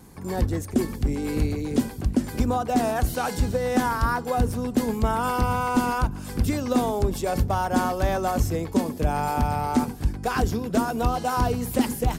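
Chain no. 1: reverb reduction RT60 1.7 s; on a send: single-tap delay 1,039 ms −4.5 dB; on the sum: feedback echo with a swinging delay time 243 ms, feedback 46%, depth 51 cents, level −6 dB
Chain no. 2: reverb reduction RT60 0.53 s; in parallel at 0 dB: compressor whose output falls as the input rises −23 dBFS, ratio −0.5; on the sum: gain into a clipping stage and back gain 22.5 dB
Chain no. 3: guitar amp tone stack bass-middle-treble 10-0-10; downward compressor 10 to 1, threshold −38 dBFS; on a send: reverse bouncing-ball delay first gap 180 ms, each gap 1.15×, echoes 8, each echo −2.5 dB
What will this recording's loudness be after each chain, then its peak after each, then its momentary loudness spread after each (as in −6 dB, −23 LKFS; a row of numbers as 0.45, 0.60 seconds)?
−24.5, −26.0, −39.0 LKFS; −8.0, −22.5, −25.0 dBFS; 3, 3, 2 LU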